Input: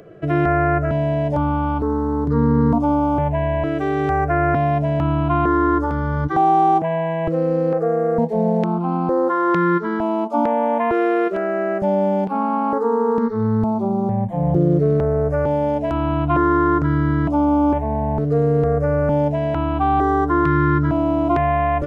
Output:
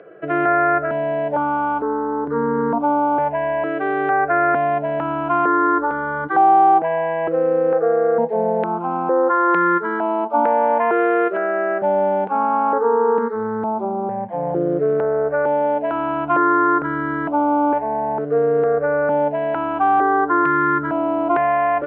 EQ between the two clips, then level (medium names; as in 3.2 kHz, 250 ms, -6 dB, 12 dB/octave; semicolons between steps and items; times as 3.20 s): cabinet simulation 330–2900 Hz, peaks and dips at 490 Hz +4 dB, 860 Hz +4 dB, 1.5 kHz +8 dB; 0.0 dB